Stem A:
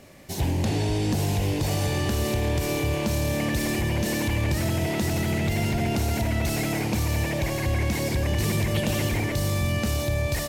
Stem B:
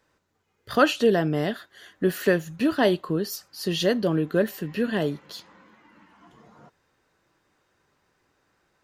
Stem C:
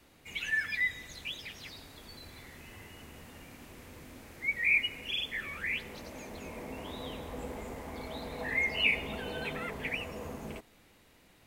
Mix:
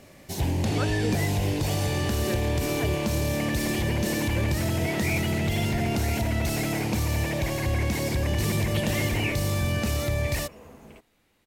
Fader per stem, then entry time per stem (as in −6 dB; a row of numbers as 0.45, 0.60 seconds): −1.0, −14.0, −6.0 decibels; 0.00, 0.00, 0.40 seconds